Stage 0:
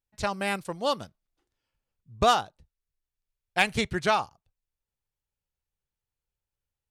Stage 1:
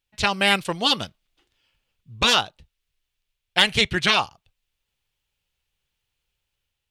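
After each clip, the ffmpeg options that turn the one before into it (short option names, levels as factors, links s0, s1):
-af "equalizer=f=3000:t=o:w=1.2:g=12,dynaudnorm=f=130:g=7:m=1.41,afftfilt=real='re*lt(hypot(re,im),0.447)':imag='im*lt(hypot(re,im),0.447)':win_size=1024:overlap=0.75,volume=1.78"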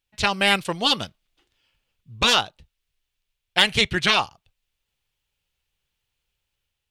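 -af "aeval=exprs='0.891*(cos(1*acos(clip(val(0)/0.891,-1,1)))-cos(1*PI/2))+0.0112*(cos(6*acos(clip(val(0)/0.891,-1,1)))-cos(6*PI/2))':c=same"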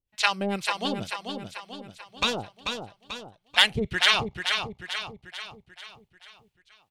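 -filter_complex "[0:a]acrossover=split=630[s0][s1];[s0]aeval=exprs='val(0)*(1-1/2+1/2*cos(2*PI*2.1*n/s))':c=same[s2];[s1]aeval=exprs='val(0)*(1-1/2-1/2*cos(2*PI*2.1*n/s))':c=same[s3];[s2][s3]amix=inputs=2:normalize=0,asplit=2[s4][s5];[s5]aecho=0:1:439|878|1317|1756|2195|2634:0.501|0.251|0.125|0.0626|0.0313|0.0157[s6];[s4][s6]amix=inputs=2:normalize=0"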